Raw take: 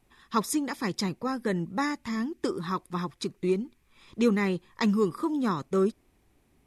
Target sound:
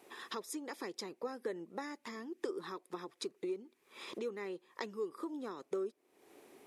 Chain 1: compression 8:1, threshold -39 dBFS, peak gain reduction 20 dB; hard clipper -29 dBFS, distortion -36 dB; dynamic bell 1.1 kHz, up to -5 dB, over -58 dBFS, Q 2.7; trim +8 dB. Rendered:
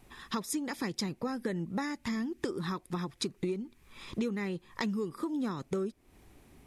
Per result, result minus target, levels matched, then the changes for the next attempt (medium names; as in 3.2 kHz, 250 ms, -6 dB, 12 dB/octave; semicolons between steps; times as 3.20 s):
compression: peak gain reduction -8.5 dB; 500 Hz band -5.0 dB
change: compression 8:1, threshold -48.5 dBFS, peak gain reduction 28.5 dB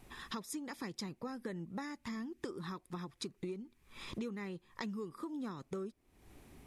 500 Hz band -4.5 dB
add after dynamic bell: resonant high-pass 410 Hz, resonance Q 2.1